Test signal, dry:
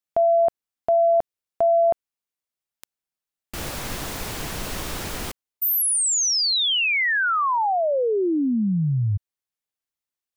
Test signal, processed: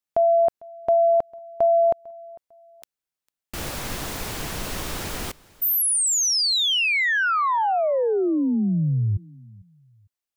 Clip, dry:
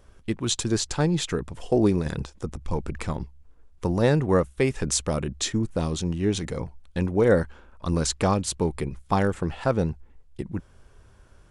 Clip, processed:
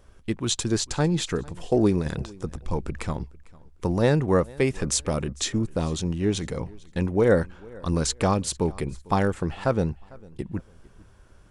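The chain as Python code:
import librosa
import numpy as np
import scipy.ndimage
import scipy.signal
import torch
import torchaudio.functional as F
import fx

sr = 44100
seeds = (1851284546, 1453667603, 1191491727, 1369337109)

y = fx.echo_feedback(x, sr, ms=450, feedback_pct=30, wet_db=-23.5)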